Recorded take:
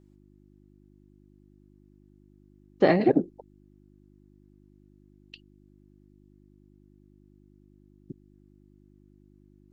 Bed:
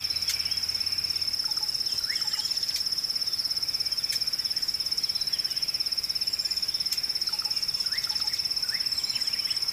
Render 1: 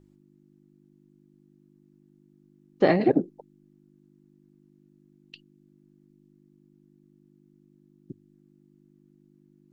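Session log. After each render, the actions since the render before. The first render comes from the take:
hum removal 50 Hz, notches 2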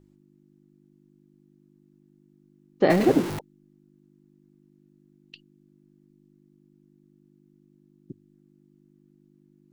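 0:02.90–0:03.39: converter with a step at zero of −25.5 dBFS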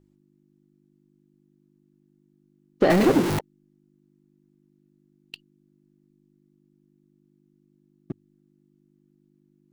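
leveller curve on the samples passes 2
downward compressor 2.5 to 1, threshold −17 dBFS, peak gain reduction 4.5 dB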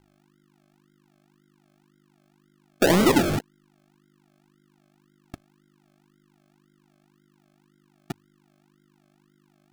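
sample-and-hold swept by an LFO 36×, swing 60% 1.9 Hz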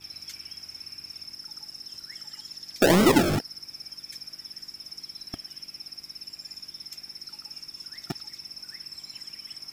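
mix in bed −13 dB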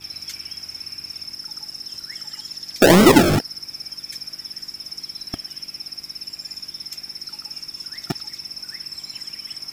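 level +7.5 dB
brickwall limiter −3 dBFS, peak gain reduction 0.5 dB

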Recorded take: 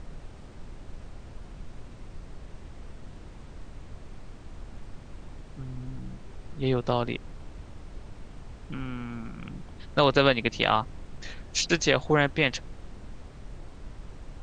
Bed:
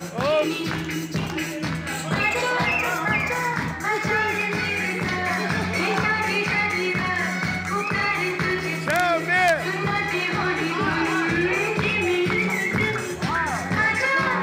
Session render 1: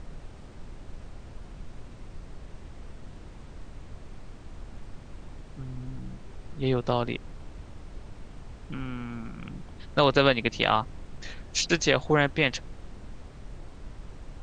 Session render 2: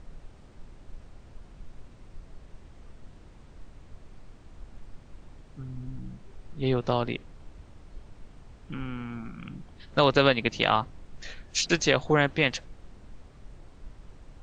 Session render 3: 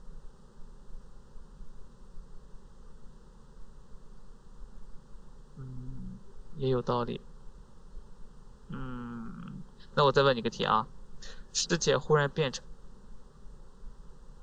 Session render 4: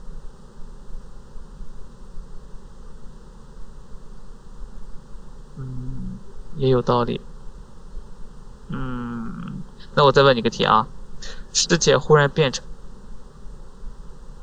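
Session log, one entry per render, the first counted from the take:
no processing that can be heard
noise reduction from a noise print 6 dB
phaser with its sweep stopped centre 450 Hz, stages 8
level +11 dB; brickwall limiter −3 dBFS, peak gain reduction 3 dB

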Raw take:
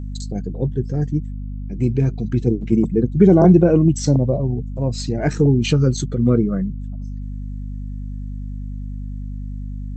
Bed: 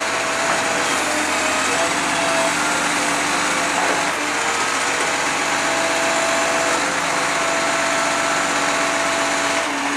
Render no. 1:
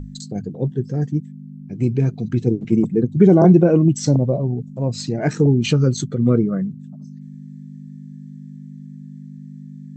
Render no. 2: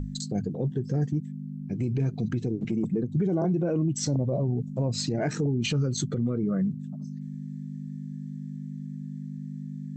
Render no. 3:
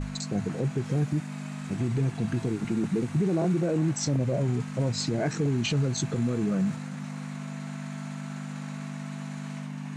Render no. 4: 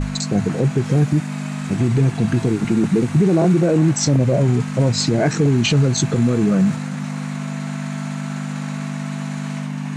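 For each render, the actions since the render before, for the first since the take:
mains-hum notches 50/100 Hz
downward compressor 3 to 1, threshold −19 dBFS, peak gain reduction 9.5 dB; brickwall limiter −19 dBFS, peak gain reduction 9.5 dB
mix in bed −27.5 dB
level +10.5 dB

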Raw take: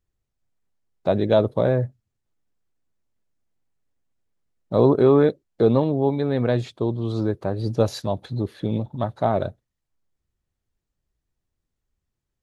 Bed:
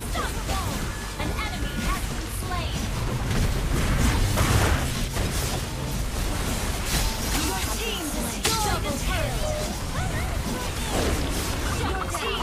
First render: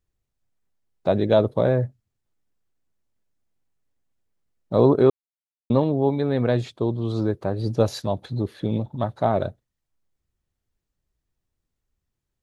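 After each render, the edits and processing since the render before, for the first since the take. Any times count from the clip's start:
0:05.10–0:05.70: silence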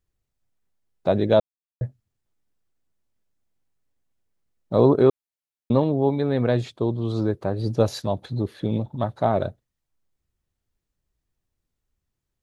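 0:01.40–0:01.81: silence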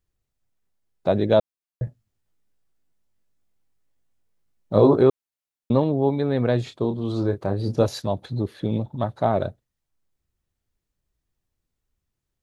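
0:01.85–0:05.03: double-tracking delay 19 ms −3 dB
0:06.64–0:07.86: double-tracking delay 30 ms −8 dB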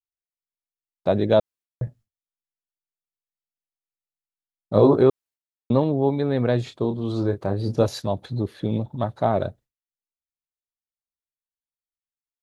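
downward expander −44 dBFS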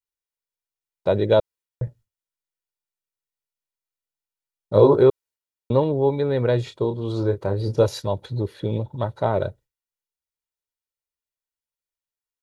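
comb filter 2.1 ms, depth 49%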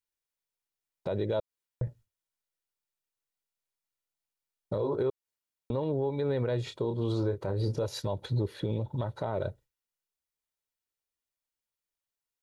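downward compressor 12 to 1, threshold −24 dBFS, peak gain reduction 16 dB
brickwall limiter −21 dBFS, peak gain reduction 8 dB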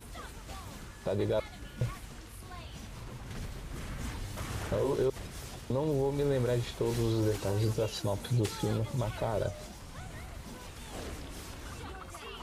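mix in bed −17 dB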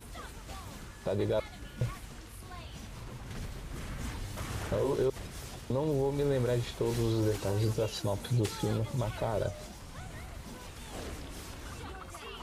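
no processing that can be heard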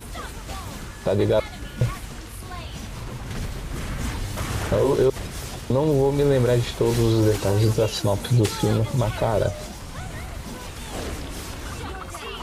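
level +10.5 dB

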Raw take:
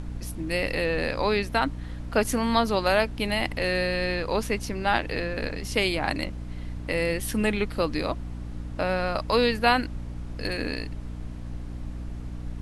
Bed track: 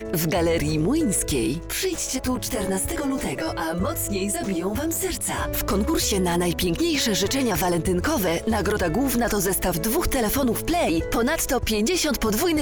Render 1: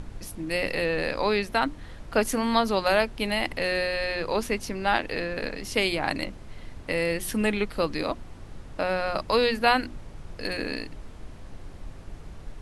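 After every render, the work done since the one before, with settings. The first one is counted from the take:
mains-hum notches 60/120/180/240/300/360 Hz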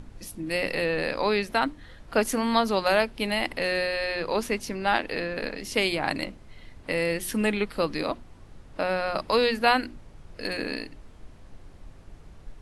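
noise reduction from a noise print 6 dB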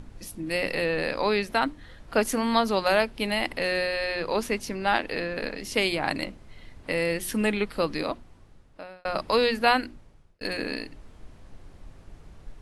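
0:07.97–0:09.05: fade out
0:09.75–0:10.41: fade out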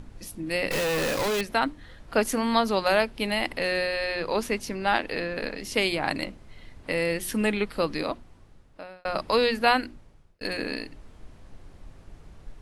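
0:00.71–0:01.41: log-companded quantiser 2 bits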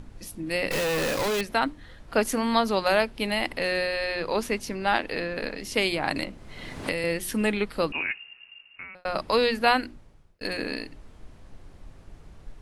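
0:06.16–0:07.04: multiband upward and downward compressor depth 100%
0:07.92–0:08.95: voice inversion scrambler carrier 2,800 Hz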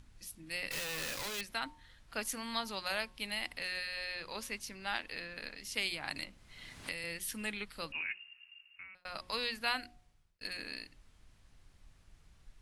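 guitar amp tone stack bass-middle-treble 5-5-5
hum removal 181.3 Hz, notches 6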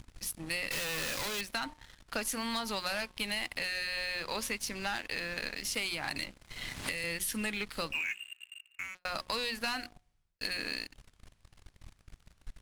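leveller curve on the samples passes 3
downward compressor, threshold −32 dBFS, peak gain reduction 9 dB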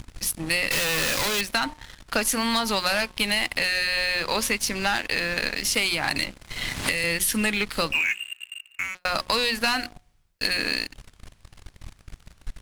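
level +11 dB

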